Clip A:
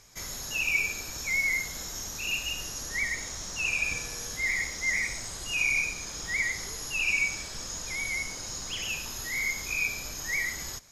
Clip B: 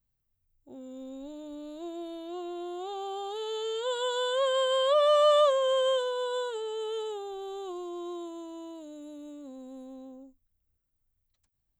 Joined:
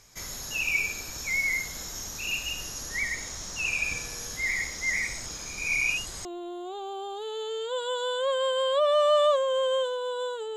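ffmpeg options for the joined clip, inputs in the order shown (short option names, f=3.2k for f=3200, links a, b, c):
-filter_complex "[0:a]apad=whole_dur=10.56,atrim=end=10.56,asplit=2[a][b];[a]atrim=end=5.262[c];[b]atrim=start=5.258:end=6.252,asetpts=PTS-STARTPTS,areverse[d];[1:a]atrim=start=2.388:end=6.7[e];[c][d]acrossfade=d=0.004:c1=hsin:c2=hsin[f];[f][e]acrossfade=d=0.004:c1=hsin:c2=hsin"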